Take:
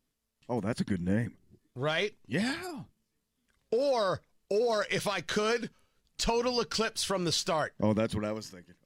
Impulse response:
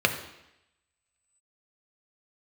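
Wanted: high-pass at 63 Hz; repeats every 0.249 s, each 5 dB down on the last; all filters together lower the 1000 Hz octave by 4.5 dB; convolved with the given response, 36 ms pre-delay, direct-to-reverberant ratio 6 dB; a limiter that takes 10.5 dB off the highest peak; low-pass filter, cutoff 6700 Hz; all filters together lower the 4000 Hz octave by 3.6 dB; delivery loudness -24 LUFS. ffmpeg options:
-filter_complex "[0:a]highpass=63,lowpass=6.7k,equalizer=f=1k:t=o:g=-6,equalizer=f=4k:t=o:g=-3.5,alimiter=level_in=4dB:limit=-24dB:level=0:latency=1,volume=-4dB,aecho=1:1:249|498|747|996|1245|1494|1743:0.562|0.315|0.176|0.0988|0.0553|0.031|0.0173,asplit=2[a][b];[1:a]atrim=start_sample=2205,adelay=36[c];[b][c]afir=irnorm=-1:irlink=0,volume=-21dB[d];[a][d]amix=inputs=2:normalize=0,volume=11.5dB"

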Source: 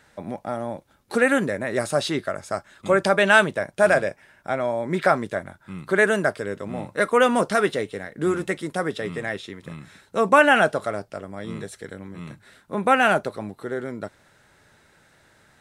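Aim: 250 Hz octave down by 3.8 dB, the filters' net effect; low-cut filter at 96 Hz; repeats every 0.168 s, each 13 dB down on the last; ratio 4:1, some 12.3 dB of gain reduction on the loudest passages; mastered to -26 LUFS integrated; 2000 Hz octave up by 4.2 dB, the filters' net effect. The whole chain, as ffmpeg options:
-af "highpass=96,equalizer=f=250:t=o:g=-5,equalizer=f=2k:t=o:g=6,acompressor=threshold=-23dB:ratio=4,aecho=1:1:168|336|504:0.224|0.0493|0.0108,volume=2.5dB"

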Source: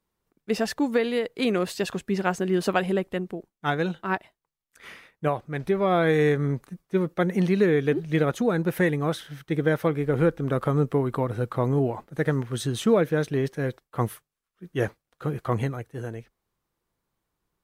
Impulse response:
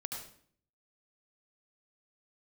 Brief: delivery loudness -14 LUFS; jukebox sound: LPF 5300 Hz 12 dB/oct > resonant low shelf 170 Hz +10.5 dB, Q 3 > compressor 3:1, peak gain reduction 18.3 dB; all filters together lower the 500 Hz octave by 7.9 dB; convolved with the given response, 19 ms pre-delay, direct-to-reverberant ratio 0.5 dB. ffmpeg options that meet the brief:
-filter_complex "[0:a]equalizer=f=500:t=o:g=-7.5,asplit=2[a][b];[1:a]atrim=start_sample=2205,adelay=19[c];[b][c]afir=irnorm=-1:irlink=0,volume=-0.5dB[d];[a][d]amix=inputs=2:normalize=0,lowpass=5.3k,lowshelf=f=170:t=q:w=3:g=10.5,acompressor=threshold=-29dB:ratio=3,volume=15dB"

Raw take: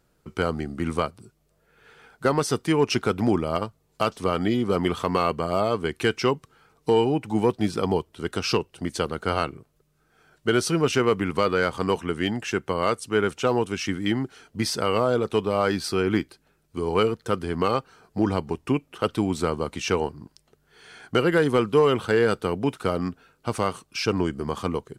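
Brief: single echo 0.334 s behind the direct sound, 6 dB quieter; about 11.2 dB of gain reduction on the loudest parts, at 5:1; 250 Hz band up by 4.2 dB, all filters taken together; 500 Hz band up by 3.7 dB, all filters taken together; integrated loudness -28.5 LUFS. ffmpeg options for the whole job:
-af "equalizer=f=250:t=o:g=4.5,equalizer=f=500:t=o:g=3,acompressor=threshold=-25dB:ratio=5,aecho=1:1:334:0.501,volume=1dB"

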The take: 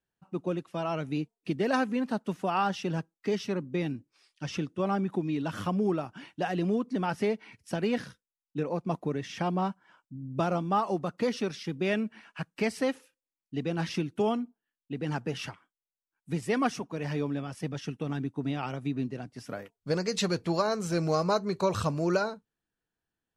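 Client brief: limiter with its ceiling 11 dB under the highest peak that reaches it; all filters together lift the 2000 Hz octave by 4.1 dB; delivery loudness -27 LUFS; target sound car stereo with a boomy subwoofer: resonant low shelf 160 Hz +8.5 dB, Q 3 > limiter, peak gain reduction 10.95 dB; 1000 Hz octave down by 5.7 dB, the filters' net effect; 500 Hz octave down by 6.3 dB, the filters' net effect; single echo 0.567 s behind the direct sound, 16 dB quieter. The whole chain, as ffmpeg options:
-af "equalizer=f=500:t=o:g=-5,equalizer=f=1k:t=o:g=-8,equalizer=f=2k:t=o:g=8.5,alimiter=level_in=1dB:limit=-24dB:level=0:latency=1,volume=-1dB,lowshelf=f=160:t=q:w=3:g=8.5,aecho=1:1:567:0.158,volume=10.5dB,alimiter=limit=-18dB:level=0:latency=1"

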